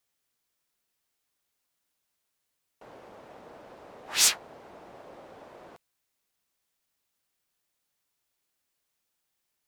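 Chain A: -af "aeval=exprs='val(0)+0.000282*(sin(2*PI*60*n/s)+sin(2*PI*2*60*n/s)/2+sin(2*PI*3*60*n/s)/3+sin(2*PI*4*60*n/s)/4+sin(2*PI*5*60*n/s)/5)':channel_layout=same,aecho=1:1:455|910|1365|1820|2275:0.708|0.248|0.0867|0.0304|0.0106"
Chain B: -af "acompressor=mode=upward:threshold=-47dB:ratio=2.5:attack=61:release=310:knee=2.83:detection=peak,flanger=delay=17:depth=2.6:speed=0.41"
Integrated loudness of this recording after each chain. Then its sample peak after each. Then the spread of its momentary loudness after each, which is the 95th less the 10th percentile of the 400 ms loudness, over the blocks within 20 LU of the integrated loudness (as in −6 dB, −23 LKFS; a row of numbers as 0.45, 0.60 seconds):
−25.5, −27.0 LKFS; −6.5, −11.0 dBFS; 20, 12 LU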